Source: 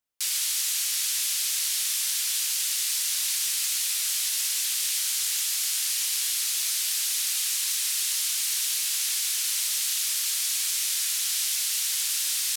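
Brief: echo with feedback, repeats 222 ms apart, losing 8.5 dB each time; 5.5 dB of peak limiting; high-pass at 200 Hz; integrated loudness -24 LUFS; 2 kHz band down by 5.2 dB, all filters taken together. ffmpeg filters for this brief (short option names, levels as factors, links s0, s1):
-af "highpass=200,equalizer=f=2000:t=o:g=-7,alimiter=limit=0.112:level=0:latency=1,aecho=1:1:222|444|666|888:0.376|0.143|0.0543|0.0206,volume=1.19"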